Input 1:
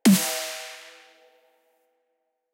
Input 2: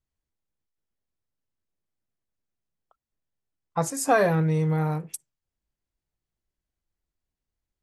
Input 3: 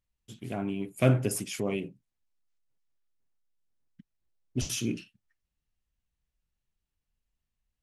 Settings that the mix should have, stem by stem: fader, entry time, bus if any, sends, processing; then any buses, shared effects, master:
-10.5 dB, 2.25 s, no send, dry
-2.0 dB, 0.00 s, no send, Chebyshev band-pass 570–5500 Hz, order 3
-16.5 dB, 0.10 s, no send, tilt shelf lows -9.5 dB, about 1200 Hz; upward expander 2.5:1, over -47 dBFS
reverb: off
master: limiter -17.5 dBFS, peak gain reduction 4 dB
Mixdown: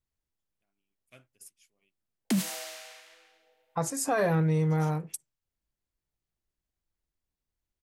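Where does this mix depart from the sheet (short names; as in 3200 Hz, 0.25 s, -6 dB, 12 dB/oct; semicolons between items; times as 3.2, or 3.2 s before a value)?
stem 2: missing Chebyshev band-pass 570–5500 Hz, order 3; stem 3 -16.5 dB -> -24.5 dB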